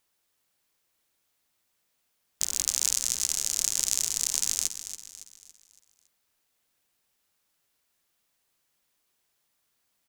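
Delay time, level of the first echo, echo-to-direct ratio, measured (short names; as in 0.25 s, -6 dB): 0.28 s, -11.0 dB, -10.0 dB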